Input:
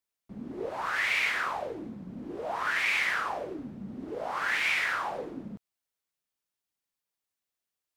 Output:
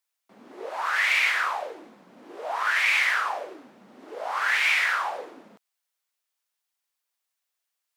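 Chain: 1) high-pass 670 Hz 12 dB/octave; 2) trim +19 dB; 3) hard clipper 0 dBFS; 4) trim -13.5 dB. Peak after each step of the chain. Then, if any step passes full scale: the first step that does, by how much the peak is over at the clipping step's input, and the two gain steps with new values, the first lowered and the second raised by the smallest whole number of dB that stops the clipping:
-16.0 dBFS, +3.0 dBFS, 0.0 dBFS, -13.5 dBFS; step 2, 3.0 dB; step 2 +16 dB, step 4 -10.5 dB

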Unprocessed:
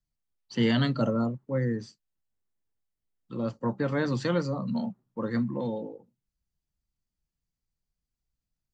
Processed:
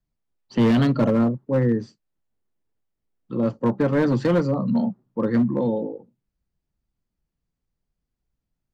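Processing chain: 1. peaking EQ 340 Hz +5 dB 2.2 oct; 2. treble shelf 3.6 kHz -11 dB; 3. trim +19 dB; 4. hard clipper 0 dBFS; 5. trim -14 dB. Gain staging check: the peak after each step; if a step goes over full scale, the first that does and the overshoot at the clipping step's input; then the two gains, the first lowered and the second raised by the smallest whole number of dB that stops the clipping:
-11.0 dBFS, -11.0 dBFS, +8.0 dBFS, 0.0 dBFS, -14.0 dBFS; step 3, 8.0 dB; step 3 +11 dB, step 5 -6 dB

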